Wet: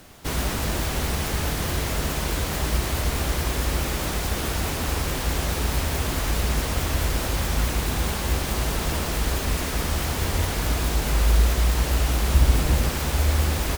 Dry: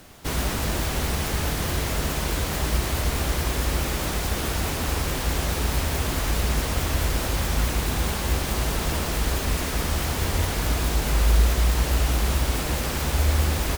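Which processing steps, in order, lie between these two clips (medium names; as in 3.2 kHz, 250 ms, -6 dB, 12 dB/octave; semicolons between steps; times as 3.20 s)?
12.34–12.89 s: bass shelf 200 Hz +8 dB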